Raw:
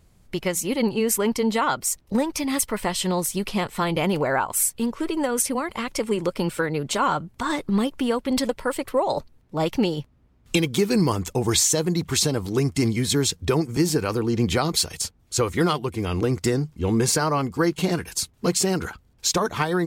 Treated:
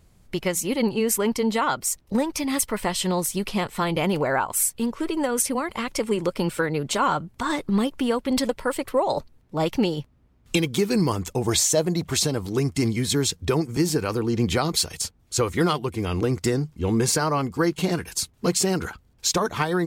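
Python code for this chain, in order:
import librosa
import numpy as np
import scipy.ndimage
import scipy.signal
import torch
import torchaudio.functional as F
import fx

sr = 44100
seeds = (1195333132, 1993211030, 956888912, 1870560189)

p1 = fx.peak_eq(x, sr, hz=630.0, db=10.0, octaves=0.4, at=(11.47, 12.24))
p2 = fx.rider(p1, sr, range_db=4, speed_s=2.0)
p3 = p1 + (p2 * librosa.db_to_amplitude(-1.5))
y = p3 * librosa.db_to_amplitude(-6.0)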